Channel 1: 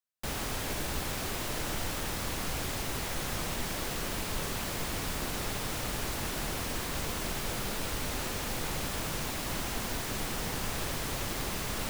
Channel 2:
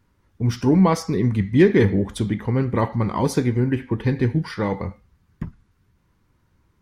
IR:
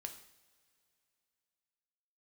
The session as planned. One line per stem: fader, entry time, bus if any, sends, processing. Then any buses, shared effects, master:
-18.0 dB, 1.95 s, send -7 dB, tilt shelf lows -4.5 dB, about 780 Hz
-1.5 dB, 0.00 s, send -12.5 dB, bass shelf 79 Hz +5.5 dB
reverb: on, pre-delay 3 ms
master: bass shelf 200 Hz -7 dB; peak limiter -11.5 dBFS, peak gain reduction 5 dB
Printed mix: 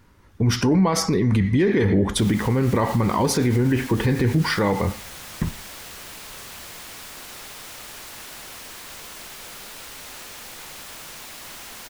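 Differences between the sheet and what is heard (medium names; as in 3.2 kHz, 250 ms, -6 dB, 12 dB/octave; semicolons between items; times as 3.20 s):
stem 1 -18.0 dB -> -7.5 dB; stem 2 -1.5 dB -> +10.0 dB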